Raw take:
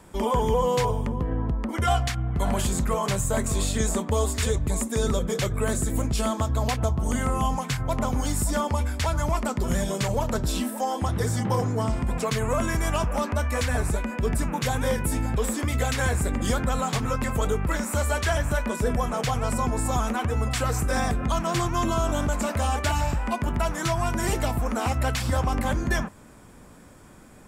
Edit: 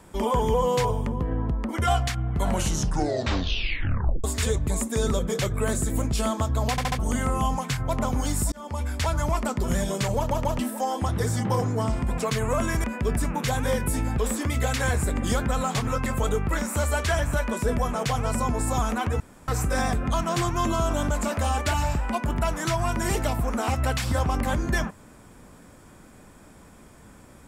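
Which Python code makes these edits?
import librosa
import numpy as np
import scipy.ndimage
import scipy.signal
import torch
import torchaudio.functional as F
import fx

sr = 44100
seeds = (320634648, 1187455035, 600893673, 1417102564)

y = fx.edit(x, sr, fx.tape_stop(start_s=2.46, length_s=1.78),
    fx.stutter_over(start_s=6.71, slice_s=0.07, count=4),
    fx.fade_in_span(start_s=8.52, length_s=0.43),
    fx.stutter_over(start_s=10.17, slice_s=0.14, count=3),
    fx.cut(start_s=12.84, length_s=1.18),
    fx.room_tone_fill(start_s=20.38, length_s=0.28), tone=tone)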